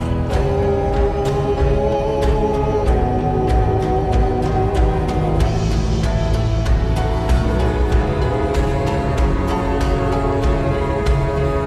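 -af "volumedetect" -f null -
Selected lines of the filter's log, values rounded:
mean_volume: -16.5 dB
max_volume: -5.6 dB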